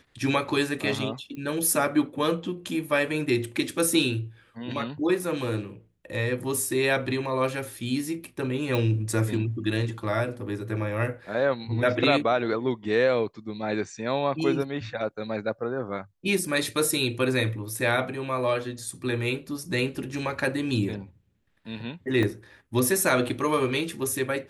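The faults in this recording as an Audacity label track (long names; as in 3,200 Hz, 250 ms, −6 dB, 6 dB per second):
1.350000	1.350000	click −28 dBFS
8.750000	8.750000	click
22.230000	22.230000	drop-out 2.2 ms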